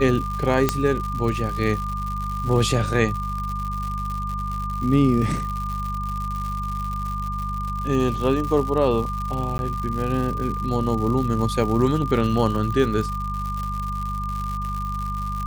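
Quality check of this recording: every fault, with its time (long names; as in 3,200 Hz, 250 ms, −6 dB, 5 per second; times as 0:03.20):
surface crackle 170 per second −28 dBFS
mains hum 50 Hz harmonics 4 −29 dBFS
whistle 1,200 Hz −28 dBFS
0:00.69: click −3 dBFS
0:09.58–0:09.59: drop-out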